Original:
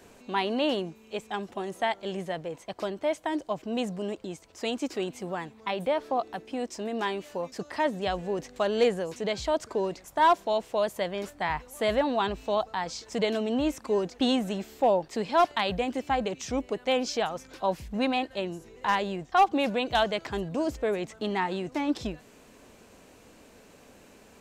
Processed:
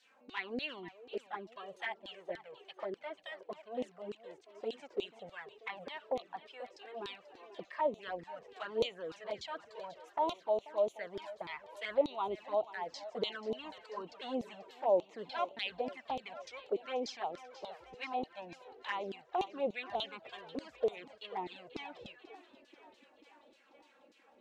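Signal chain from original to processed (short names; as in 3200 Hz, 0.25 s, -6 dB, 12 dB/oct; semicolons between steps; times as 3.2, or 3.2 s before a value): LFO band-pass saw down 3.4 Hz 340–4400 Hz; thinning echo 0.487 s, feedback 66%, high-pass 170 Hz, level -15.5 dB; envelope flanger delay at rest 4 ms, full sweep at -30 dBFS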